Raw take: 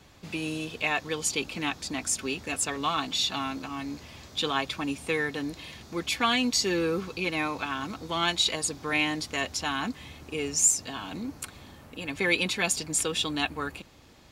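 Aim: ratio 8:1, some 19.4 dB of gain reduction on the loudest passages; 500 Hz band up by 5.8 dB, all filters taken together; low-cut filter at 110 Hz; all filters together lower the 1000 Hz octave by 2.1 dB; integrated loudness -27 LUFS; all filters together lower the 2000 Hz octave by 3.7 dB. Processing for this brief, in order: HPF 110 Hz; bell 500 Hz +8 dB; bell 1000 Hz -4.5 dB; bell 2000 Hz -4 dB; compressor 8:1, threshold -39 dBFS; gain +15 dB

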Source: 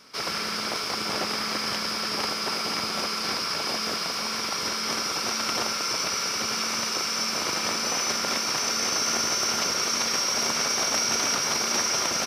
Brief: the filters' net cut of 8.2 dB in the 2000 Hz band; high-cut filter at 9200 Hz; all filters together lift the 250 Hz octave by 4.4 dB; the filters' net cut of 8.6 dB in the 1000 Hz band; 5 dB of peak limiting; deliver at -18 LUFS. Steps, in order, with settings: LPF 9200 Hz; bell 250 Hz +6 dB; bell 1000 Hz -9 dB; bell 2000 Hz -8 dB; gain +9.5 dB; limiter -10 dBFS

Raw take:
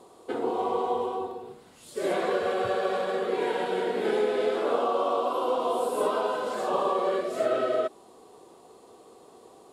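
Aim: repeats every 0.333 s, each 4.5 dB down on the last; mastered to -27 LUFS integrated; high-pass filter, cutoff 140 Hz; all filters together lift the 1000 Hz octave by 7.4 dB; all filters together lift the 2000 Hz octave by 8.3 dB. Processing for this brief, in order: HPF 140 Hz; bell 1000 Hz +7.5 dB; bell 2000 Hz +8 dB; feedback echo 0.333 s, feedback 60%, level -4.5 dB; gain -5 dB

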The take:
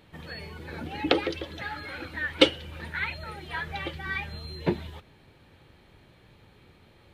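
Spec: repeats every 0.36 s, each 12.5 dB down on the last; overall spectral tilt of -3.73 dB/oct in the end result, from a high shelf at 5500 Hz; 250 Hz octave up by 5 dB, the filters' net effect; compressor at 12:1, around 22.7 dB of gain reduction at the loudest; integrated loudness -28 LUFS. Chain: bell 250 Hz +7 dB; high shelf 5500 Hz -6.5 dB; compressor 12:1, threshold -33 dBFS; feedback echo 0.36 s, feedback 24%, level -12.5 dB; gain +10.5 dB

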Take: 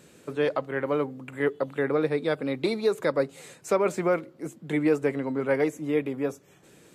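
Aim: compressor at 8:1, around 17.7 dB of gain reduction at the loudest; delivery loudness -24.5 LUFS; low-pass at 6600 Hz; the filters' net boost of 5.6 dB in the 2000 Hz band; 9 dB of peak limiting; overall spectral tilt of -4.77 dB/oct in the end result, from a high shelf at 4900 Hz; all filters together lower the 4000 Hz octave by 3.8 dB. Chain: LPF 6600 Hz; bell 2000 Hz +8 dB; bell 4000 Hz -8 dB; high shelf 4900 Hz +3.5 dB; compressor 8:1, threshold -37 dBFS; gain +19 dB; limiter -13.5 dBFS

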